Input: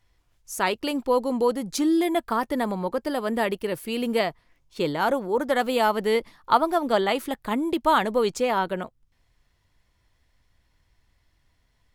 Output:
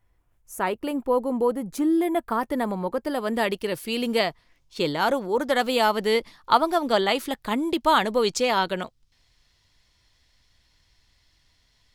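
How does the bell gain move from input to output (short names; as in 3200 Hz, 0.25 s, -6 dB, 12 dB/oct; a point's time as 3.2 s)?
bell 4600 Hz 1.7 oct
1.89 s -13 dB
2.47 s -4 dB
3.02 s -4 dB
3.48 s +6 dB
8.17 s +6 dB
8.62 s +12.5 dB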